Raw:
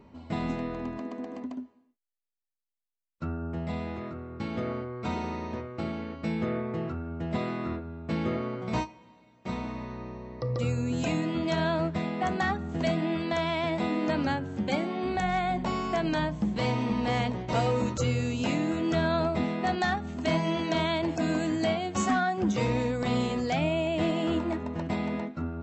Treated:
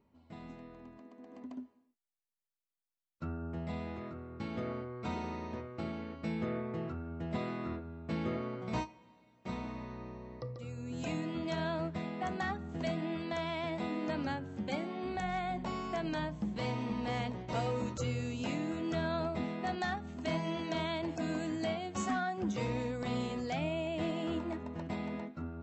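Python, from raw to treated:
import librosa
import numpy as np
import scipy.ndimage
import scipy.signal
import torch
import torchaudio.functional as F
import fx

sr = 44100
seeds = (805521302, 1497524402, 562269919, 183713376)

y = fx.gain(x, sr, db=fx.line((1.16, -17.5), (1.58, -6.0), (10.37, -6.0), (10.59, -17.0), (11.1, -8.0)))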